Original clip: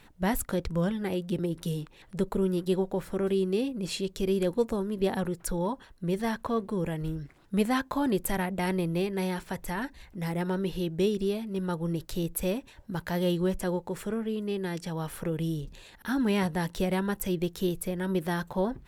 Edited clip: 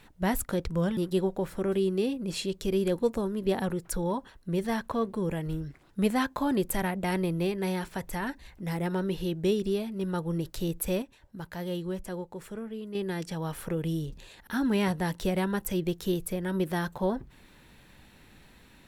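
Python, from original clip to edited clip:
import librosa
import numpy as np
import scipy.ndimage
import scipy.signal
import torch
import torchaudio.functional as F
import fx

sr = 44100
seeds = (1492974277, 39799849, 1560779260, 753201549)

y = fx.edit(x, sr, fx.cut(start_s=0.97, length_s=1.55),
    fx.clip_gain(start_s=12.57, length_s=1.93, db=-6.5), tone=tone)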